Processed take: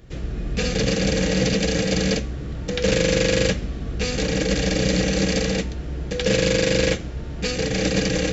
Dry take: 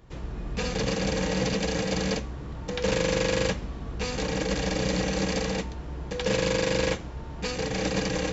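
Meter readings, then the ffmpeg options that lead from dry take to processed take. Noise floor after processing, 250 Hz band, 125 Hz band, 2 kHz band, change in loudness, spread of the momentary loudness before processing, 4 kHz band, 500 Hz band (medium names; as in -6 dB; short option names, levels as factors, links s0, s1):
-32 dBFS, +7.0 dB, +7.0 dB, +5.5 dB, +6.0 dB, 10 LU, +7.0 dB, +5.5 dB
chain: -af "equalizer=f=960:t=o:w=0.62:g=-13,volume=2.24"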